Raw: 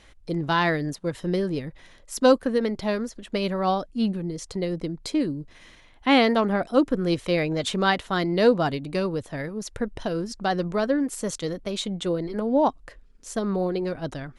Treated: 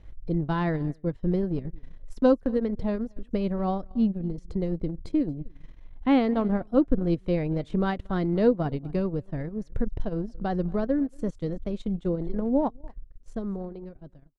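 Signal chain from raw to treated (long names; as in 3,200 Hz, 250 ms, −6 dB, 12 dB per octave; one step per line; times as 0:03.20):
fade-out on the ending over 1.72 s
spectral tilt −4 dB per octave
single-tap delay 232 ms −22 dB
transient designer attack +2 dB, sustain −11 dB
0:01.01–0:01.63: low-pass that shuts in the quiet parts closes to 2,400 Hz, open at −12.5 dBFS
level −8.5 dB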